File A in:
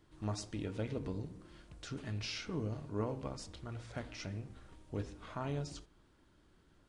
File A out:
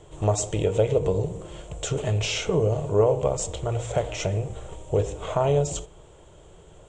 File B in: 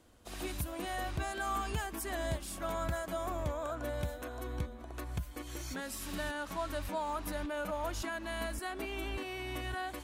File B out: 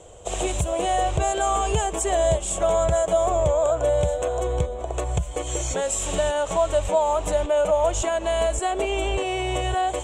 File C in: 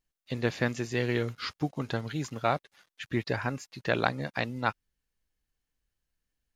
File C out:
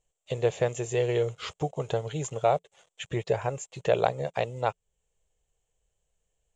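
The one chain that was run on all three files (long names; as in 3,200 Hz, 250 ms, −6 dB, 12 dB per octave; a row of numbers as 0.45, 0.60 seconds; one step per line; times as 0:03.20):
drawn EQ curve 170 Hz 0 dB, 250 Hz −16 dB, 440 Hz +8 dB, 660 Hz +7 dB, 1,600 Hz −9 dB, 3,200 Hz +1 dB, 4,800 Hz −13 dB, 7,500 Hz +11 dB, 12,000 Hz −22 dB
in parallel at +2 dB: downward compressor, threshold −39 dBFS
on the sum: normalise the peak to −9 dBFS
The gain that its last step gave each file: +10.5, +8.5, −1.5 decibels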